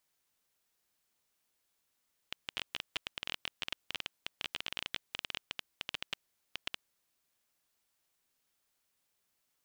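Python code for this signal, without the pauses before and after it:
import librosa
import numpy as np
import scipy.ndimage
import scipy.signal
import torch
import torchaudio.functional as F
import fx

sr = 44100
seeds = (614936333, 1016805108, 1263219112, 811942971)

y = fx.geiger_clicks(sr, seeds[0], length_s=4.44, per_s=15.0, level_db=-18.0)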